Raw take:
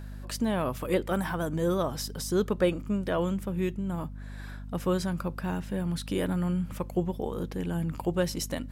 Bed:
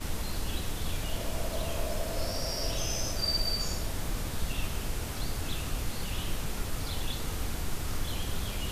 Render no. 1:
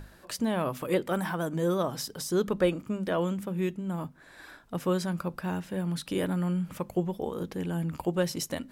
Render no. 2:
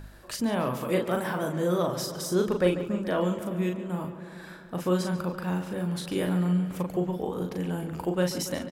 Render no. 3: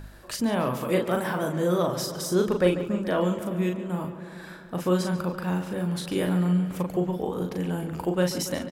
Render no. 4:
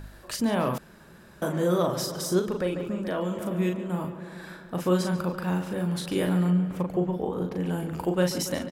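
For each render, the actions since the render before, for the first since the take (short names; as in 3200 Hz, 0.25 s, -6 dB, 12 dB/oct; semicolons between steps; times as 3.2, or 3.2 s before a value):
notches 50/100/150/200/250 Hz
doubler 39 ms -4.5 dB; on a send: darkening echo 0.142 s, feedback 73%, low-pass 4500 Hz, level -12 dB
gain +2 dB
0.78–1.42 room tone; 2.39–3.39 compressor 2:1, threshold -28 dBFS; 6.5–7.66 bell 14000 Hz -9.5 dB 2.5 oct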